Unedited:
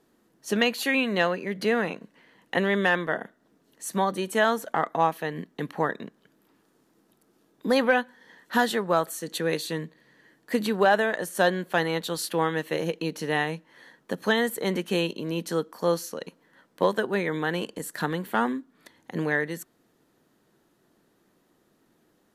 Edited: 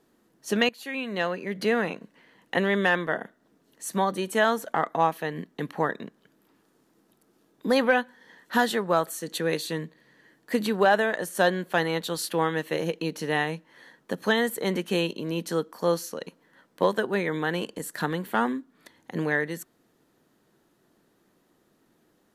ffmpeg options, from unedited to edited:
-filter_complex "[0:a]asplit=2[s0][s1];[s0]atrim=end=0.69,asetpts=PTS-STARTPTS,afade=t=out:st=0.686:d=0.004:c=hsin:silence=0.125893[s2];[s1]atrim=start=0.69,asetpts=PTS-STARTPTS,afade=t=in:d=0.91:silence=0.125893[s3];[s2][s3]concat=n=2:v=0:a=1"

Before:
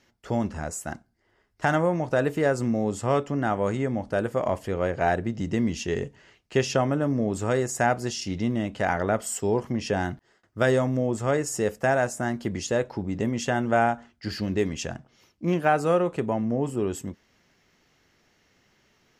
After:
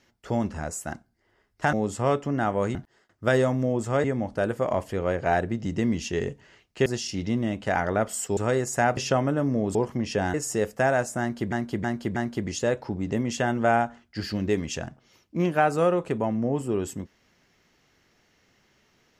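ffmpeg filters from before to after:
-filter_complex "[0:a]asplit=12[s0][s1][s2][s3][s4][s5][s6][s7][s8][s9][s10][s11];[s0]atrim=end=1.732[s12];[s1]atrim=start=2.768:end=3.792[s13];[s2]atrim=start=10.088:end=11.382[s14];[s3]atrim=start=3.788:end=6.612[s15];[s4]atrim=start=7.988:end=9.502[s16];[s5]atrim=start=7.388:end=7.992[s17];[s6]atrim=start=6.608:end=7.392[s18];[s7]atrim=start=9.498:end=10.092[s19];[s8]atrim=start=11.378:end=12.562[s20];[s9]atrim=start=12.238:end=12.562[s21];[s10]atrim=start=12.238:end=12.562[s22];[s11]atrim=start=12.238[s23];[s12][s13]acrossfade=d=0.004:c1=hsin:c2=hsin[s24];[s24][s14]acrossfade=d=0.004:c1=hsin:c2=hsin[s25];[s25][s15]acrossfade=d=0.004:c1=hsin:c2=hsin[s26];[s26][s16]acrossfade=d=0.004:c1=hsin:c2=hsin[s27];[s27][s17]acrossfade=d=0.004:c1=hsin:c2=hsin[s28];[s28][s18]acrossfade=d=0.004:c1=hsin:c2=hsin[s29];[s29][s19]acrossfade=d=0.004:c1=hsin:c2=hsin[s30];[s30][s20]acrossfade=d=0.004:c1=hsin:c2=hsin[s31];[s31][s21]acrossfade=d=0.004:c1=hsin:c2=hsin[s32];[s32][s22]acrossfade=d=0.004:c1=hsin:c2=hsin[s33];[s33][s23]acrossfade=d=0.004:c1=hsin:c2=hsin"

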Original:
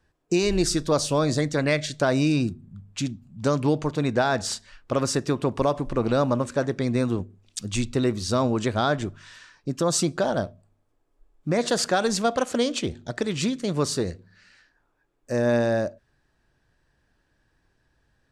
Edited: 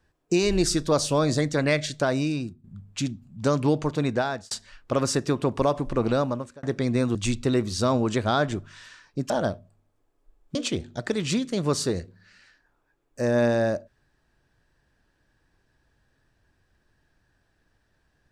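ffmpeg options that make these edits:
-filter_complex "[0:a]asplit=7[s0][s1][s2][s3][s4][s5][s6];[s0]atrim=end=2.64,asetpts=PTS-STARTPTS,afade=t=out:st=1.87:d=0.77:silence=0.211349[s7];[s1]atrim=start=2.64:end=4.51,asetpts=PTS-STARTPTS,afade=t=in:d=0.004:c=hsin:silence=0.211349,afade=t=out:st=1.26:d=0.61:c=qsin[s8];[s2]atrim=start=4.51:end=6.63,asetpts=PTS-STARTPTS,afade=t=in:d=0.004:c=hsin,afade=t=out:st=1.57:d=0.55[s9];[s3]atrim=start=6.63:end=7.152,asetpts=PTS-STARTPTS,afade=t=in:d=0.004:c=hsin[s10];[s4]atrim=start=7.648:end=9.802[s11];[s5]atrim=start=10.228:end=11.482[s12];[s6]atrim=start=12.658[s13];[s7][s8][s9][s10]concat=n=4:v=0:a=1[s14];[s14][s11]acrossfade=d=0.004:c1=hsin:c2=hsin[s15];[s15][s12]acrossfade=d=0.004:c1=hsin:c2=hsin[s16];[s16][s13]acrossfade=d=0.004:c1=hsin:c2=hsin"

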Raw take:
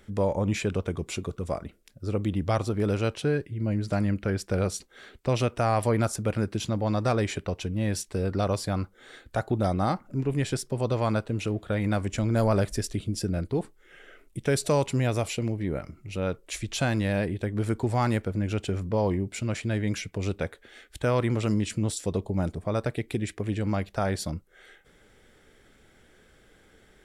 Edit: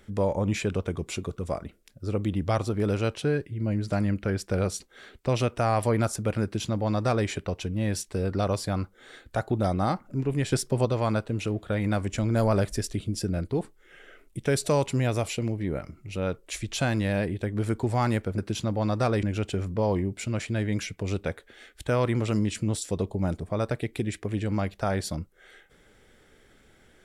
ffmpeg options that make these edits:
-filter_complex "[0:a]asplit=5[s0][s1][s2][s3][s4];[s0]atrim=end=10.522[s5];[s1]atrim=start=10.518:end=10.852,asetpts=PTS-STARTPTS,volume=1.58[s6];[s2]atrim=start=10.848:end=18.382[s7];[s3]atrim=start=6.428:end=7.282[s8];[s4]atrim=start=18.378[s9];[s5][s6]acrossfade=d=0.004:c1=hsin:c2=hsin[s10];[s10][s7]acrossfade=d=0.004:c1=hsin:c2=hsin[s11];[s11][s8]acrossfade=d=0.004:c1=hsin:c2=hsin[s12];[s12][s9]acrossfade=d=0.004:c1=hsin:c2=hsin"

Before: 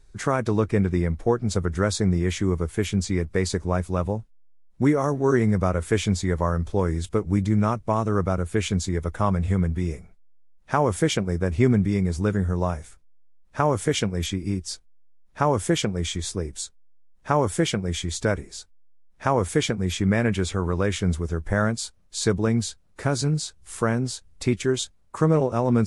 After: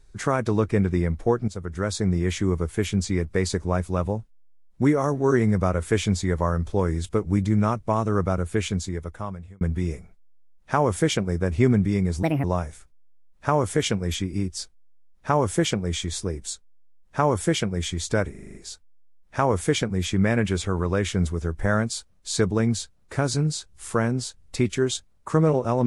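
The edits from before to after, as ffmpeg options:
-filter_complex "[0:a]asplit=11[s0][s1][s2][s3][s4][s5][s6][s7][s8][s9][s10];[s0]atrim=end=1.48,asetpts=PTS-STARTPTS,afade=t=out:st=1.476:d=0.004:c=hsin:silence=0.223872[s11];[s1]atrim=start=1.48:end=9.61,asetpts=PTS-STARTPTS,afade=t=in:d=0.99:c=qsin:silence=0.223872,afade=t=out:st=7.02:d=1.11[s12];[s2]atrim=start=9.61:end=12.234,asetpts=PTS-STARTPTS,afade=t=in:d=0.004:c=hsin[s13];[s3]atrim=start=12.23:end=12.55,asetpts=PTS-STARTPTS,asetrate=68355,aresample=44100[s14];[s4]atrim=start=12.546:end=18.462[s15];[s5]atrim=start=18.418:end=18.462[s16];[s6]atrim=start=18.418:end=18.462[s17];[s7]atrim=start=18.418:end=18.462[s18];[s8]atrim=start=18.418:end=18.462[s19];[s9]atrim=start=18.418:end=18.462[s20];[s10]atrim=start=18.418[s21];[s11][s12][s13]concat=n=3:v=0:a=1[s22];[s22][s14]acrossfade=d=0.004:c1=hsin:c2=hsin[s23];[s23][s15]acrossfade=d=0.004:c1=hsin:c2=hsin[s24];[s24][s16]acrossfade=d=0.004:c1=hsin:c2=hsin[s25];[s25][s17]acrossfade=d=0.004:c1=hsin:c2=hsin[s26];[s26][s18]acrossfade=d=0.004:c1=hsin:c2=hsin[s27];[s27][s19]acrossfade=d=0.004:c1=hsin:c2=hsin[s28];[s28][s20]acrossfade=d=0.004:c1=hsin:c2=hsin[s29];[s29][s21]acrossfade=d=0.004:c1=hsin:c2=hsin"

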